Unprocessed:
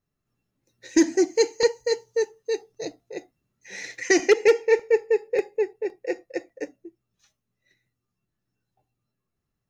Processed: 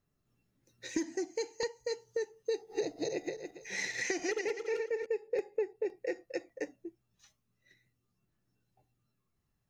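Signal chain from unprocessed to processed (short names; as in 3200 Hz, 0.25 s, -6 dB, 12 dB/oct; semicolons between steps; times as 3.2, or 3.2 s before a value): 2.53–5.06 regenerating reverse delay 0.14 s, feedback 44%, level -2 dB; compressor 6:1, threshold -32 dBFS, peak gain reduction 19.5 dB; phaser 0.36 Hz, delay 1.3 ms, feedback 22%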